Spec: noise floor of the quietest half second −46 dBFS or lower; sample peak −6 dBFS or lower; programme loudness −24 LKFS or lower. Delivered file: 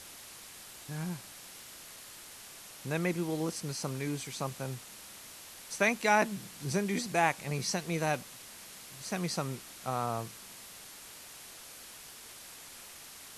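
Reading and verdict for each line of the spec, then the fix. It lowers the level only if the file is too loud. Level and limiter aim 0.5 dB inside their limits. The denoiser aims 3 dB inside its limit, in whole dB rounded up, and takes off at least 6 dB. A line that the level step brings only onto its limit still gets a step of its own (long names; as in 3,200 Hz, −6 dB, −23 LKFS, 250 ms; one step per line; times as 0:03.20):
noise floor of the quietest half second −50 dBFS: in spec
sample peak −12.0 dBFS: in spec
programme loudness −33.5 LKFS: in spec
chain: no processing needed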